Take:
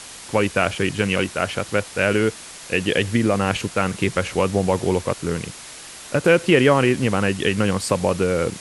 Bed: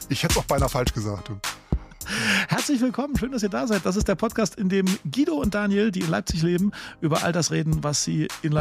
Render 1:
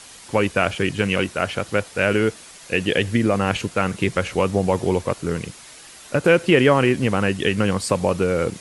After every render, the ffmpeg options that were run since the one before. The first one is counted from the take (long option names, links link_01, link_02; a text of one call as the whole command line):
ffmpeg -i in.wav -af "afftdn=noise_reduction=6:noise_floor=-39" out.wav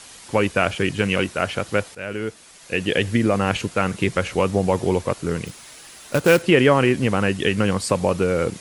ffmpeg -i in.wav -filter_complex "[0:a]asettb=1/sr,asplit=3[link_01][link_02][link_03];[link_01]atrim=end=5.464[link_04];[link_02]atrim=start=5.46:end=6.42,asetpts=PTS-STARTPTS,afade=type=in:duration=0.004:curve=qsin,afade=type=out:start_time=0.956:duration=0.004:curve=qsin,acrusher=bits=3:mode=log:mix=0:aa=0.000001[link_05];[link_03]atrim=start=6.416[link_06];[link_04][link_05]acrossfade=duration=0.004:curve1=hsin:curve2=qsin[link_07];[link_07][link_06]acrossfade=duration=0.004:curve1=qsin:curve2=hsin,asplit=2[link_08][link_09];[link_08]atrim=end=1.95,asetpts=PTS-STARTPTS,afade=type=out:start_time=1.946:duration=0.004:curve=hsin:silence=0.188365[link_10];[link_09]atrim=start=1.95,asetpts=PTS-STARTPTS,afade=type=in:duration=1.09:silence=0.188365[link_11];[link_10][link_11]concat=n=2:v=0:a=1" out.wav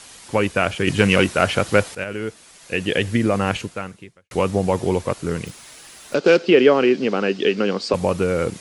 ffmpeg -i in.wav -filter_complex "[0:a]asettb=1/sr,asplit=3[link_01][link_02][link_03];[link_01]atrim=end=0.874[link_04];[link_02]atrim=start=0.87:end=2.04,asetpts=PTS-STARTPTS,afade=type=in:duration=0.004:curve=qsin,afade=type=out:start_time=1.166:duration=0.004:curve=qsin,acontrast=51[link_05];[link_03]atrim=start=2.036[link_06];[link_04][link_05]acrossfade=duration=0.004:curve1=hsin:curve2=qsin[link_07];[link_07][link_06]acrossfade=duration=0.004:curve1=qsin:curve2=hsin,asettb=1/sr,asplit=3[link_08][link_09][link_10];[link_08]atrim=end=6.144[link_11];[link_09]atrim=start=6.14:end=7.94,asetpts=PTS-STARTPTS,afade=type=in:duration=0.004:curve=qsin,afade=type=out:start_time=1.796:duration=0.004:curve=qsin,highpass=frequency=200:width=0.5412,highpass=frequency=200:width=1.3066,equalizer=frequency=410:width_type=q:width=4:gain=6,equalizer=frequency=1000:width_type=q:width=4:gain=-5,equalizer=frequency=1900:width_type=q:width=4:gain=-5,equalizer=frequency=4800:width_type=q:width=4:gain=5,lowpass=frequency=5700:width=0.5412,lowpass=frequency=5700:width=1.3066[link_12];[link_10]atrim=start=7.936[link_13];[link_11][link_12]acrossfade=duration=0.004:curve1=hsin:curve2=qsin[link_14];[link_14][link_13]acrossfade=duration=0.004:curve1=qsin:curve2=hsin,asplit=2[link_15][link_16];[link_15]atrim=end=4.31,asetpts=PTS-STARTPTS,afade=type=out:start_time=3.49:duration=0.82:curve=qua[link_17];[link_16]atrim=start=4.31,asetpts=PTS-STARTPTS,afade=type=in:duration=0.004:curve=hsin[link_18];[link_17][link_18]concat=n=2:v=0:a=1" out.wav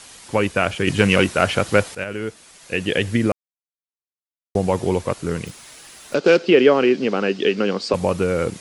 ffmpeg -i in.wav -filter_complex "[0:a]asplit=3[link_01][link_02][link_03];[link_01]atrim=end=3.32,asetpts=PTS-STARTPTS,afade=type=out:start_time=3.316:duration=0.004:curve=hsin[link_04];[link_02]atrim=start=3.32:end=4.55,asetpts=PTS-STARTPTS,volume=0[link_05];[link_03]atrim=start=4.55,asetpts=PTS-STARTPTS,afade=type=in:duration=0.004:curve=hsin[link_06];[link_04][link_05][link_06]concat=n=3:v=0:a=1" out.wav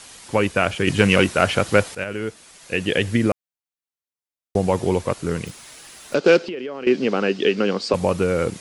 ffmpeg -i in.wav -filter_complex "[0:a]asettb=1/sr,asplit=3[link_01][link_02][link_03];[link_01]atrim=end=6.454[link_04];[link_02]atrim=start=6.45:end=6.87,asetpts=PTS-STARTPTS,afade=type=in:duration=0.004:curve=qsin,afade=type=out:start_time=0.416:duration=0.004:curve=qsin,acompressor=threshold=-27dB:ratio=8:attack=3.2:release=140:knee=1:detection=peak[link_05];[link_03]atrim=start=6.866[link_06];[link_04][link_05]acrossfade=duration=0.004:curve1=hsin:curve2=qsin[link_07];[link_07][link_06]acrossfade=duration=0.004:curve1=qsin:curve2=hsin" out.wav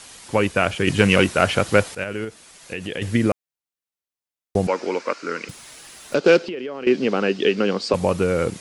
ffmpeg -i in.wav -filter_complex "[0:a]asettb=1/sr,asplit=3[link_01][link_02][link_03];[link_01]atrim=end=2.244[link_04];[link_02]atrim=start=2.24:end=3.02,asetpts=PTS-STARTPTS,afade=type=in:duration=0.004:curve=qsin,afade=type=out:start_time=0.776:duration=0.004:curve=qsin,acompressor=threshold=-28dB:ratio=2.5:attack=3.2:release=140:knee=1:detection=peak[link_05];[link_03]atrim=start=3.016[link_06];[link_04][link_05]acrossfade=duration=0.004:curve1=hsin:curve2=qsin[link_07];[link_07][link_06]acrossfade=duration=0.004:curve1=qsin:curve2=hsin,asettb=1/sr,asplit=3[link_08][link_09][link_10];[link_08]atrim=end=4.674[link_11];[link_09]atrim=start=4.67:end=5.49,asetpts=PTS-STARTPTS,afade=type=in:duration=0.004:curve=qsin,afade=type=out:start_time=0.816:duration=0.004:curve=qsin,highpass=frequency=280:width=0.5412,highpass=frequency=280:width=1.3066,equalizer=frequency=380:width_type=q:width=4:gain=-5,equalizer=frequency=740:width_type=q:width=4:gain=-6,equalizer=frequency=1400:width_type=q:width=4:gain=9,equalizer=frequency=2300:width_type=q:width=4:gain=6,equalizer=frequency=3400:width_type=q:width=4:gain=-6,equalizer=frequency=5000:width_type=q:width=4:gain=5,lowpass=frequency=6300:width=0.5412,lowpass=frequency=6300:width=1.3066[link_12];[link_10]atrim=start=5.486[link_13];[link_11][link_12]acrossfade=duration=0.004:curve1=hsin:curve2=qsin[link_14];[link_14][link_13]acrossfade=duration=0.004:curve1=qsin:curve2=hsin" out.wav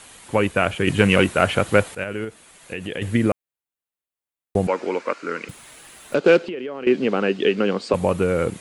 ffmpeg -i in.wav -af "equalizer=frequency=5300:width_type=o:width=0.72:gain=-9.5" out.wav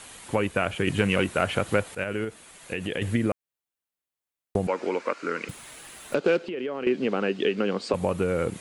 ffmpeg -i in.wav -af "acompressor=threshold=-25dB:ratio=2" out.wav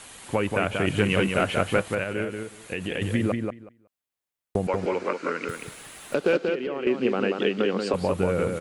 ffmpeg -i in.wav -filter_complex "[0:a]asplit=2[link_01][link_02];[link_02]adelay=185,lowpass=frequency=4600:poles=1,volume=-4.5dB,asplit=2[link_03][link_04];[link_04]adelay=185,lowpass=frequency=4600:poles=1,volume=0.16,asplit=2[link_05][link_06];[link_06]adelay=185,lowpass=frequency=4600:poles=1,volume=0.16[link_07];[link_01][link_03][link_05][link_07]amix=inputs=4:normalize=0" out.wav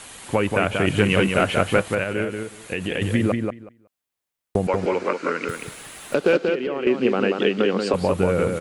ffmpeg -i in.wav -af "volume=4dB" out.wav